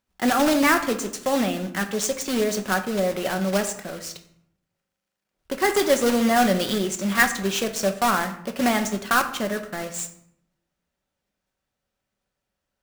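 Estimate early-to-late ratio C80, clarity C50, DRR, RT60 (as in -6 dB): 14.5 dB, 11.5 dB, 5.5 dB, 0.70 s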